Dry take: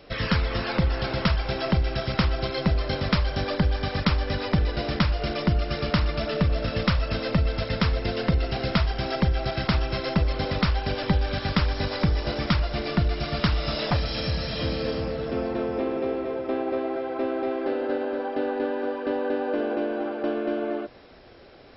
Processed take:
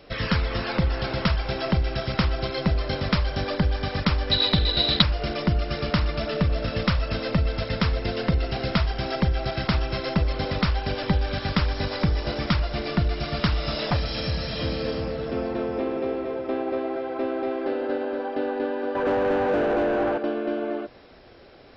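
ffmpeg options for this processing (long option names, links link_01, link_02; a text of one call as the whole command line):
ffmpeg -i in.wav -filter_complex "[0:a]asettb=1/sr,asplit=3[link_01][link_02][link_03];[link_01]atrim=end=4.314[link_04];[link_02]atrim=start=4.31:end=5.02,asetpts=PTS-STARTPTS,afade=type=in:duration=0.004:curve=qsin,afade=type=out:start_time=0.706:duration=0.004:curve=qsin,lowpass=frequency=3900:width_type=q:width=13[link_05];[link_03]atrim=start=5.016[link_06];[link_04][link_05]acrossfade=duration=0.004:curve1=hsin:curve2=qsin[link_07];[link_07][link_06]acrossfade=duration=0.004:curve1=qsin:curve2=hsin,asettb=1/sr,asplit=3[link_08][link_09][link_10];[link_08]atrim=end=18.954[link_11];[link_09]atrim=start=18.95:end=20.18,asetpts=PTS-STARTPTS,afade=type=in:duration=0.004:curve=qsin,afade=type=out:start_time=1.226:duration=0.004:curve=qsin,asplit=2[link_12][link_13];[link_13]highpass=frequency=720:poles=1,volume=23dB,asoftclip=type=tanh:threshold=-14.5dB[link_14];[link_12][link_14]amix=inputs=2:normalize=0,lowpass=frequency=1100:poles=1,volume=-6dB[link_15];[link_10]atrim=start=20.176[link_16];[link_11][link_15]acrossfade=duration=0.004:curve1=hsin:curve2=qsin[link_17];[link_17][link_16]acrossfade=duration=0.004:curve1=qsin:curve2=hsin" out.wav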